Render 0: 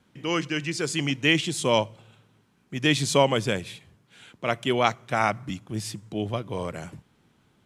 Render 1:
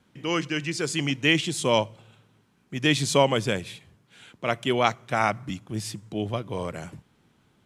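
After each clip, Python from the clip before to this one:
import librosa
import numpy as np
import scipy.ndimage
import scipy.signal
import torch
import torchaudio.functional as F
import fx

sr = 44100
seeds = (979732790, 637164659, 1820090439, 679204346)

y = x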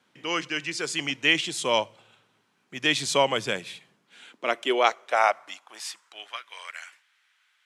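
y = fx.weighting(x, sr, curve='A')
y = fx.filter_sweep_highpass(y, sr, from_hz=65.0, to_hz=1800.0, start_s=2.87, end_s=6.52, q=1.9)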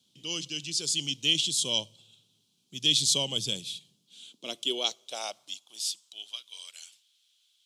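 y = fx.curve_eq(x, sr, hz=(160.0, 1900.0, 3300.0), db=(0, -27, 5))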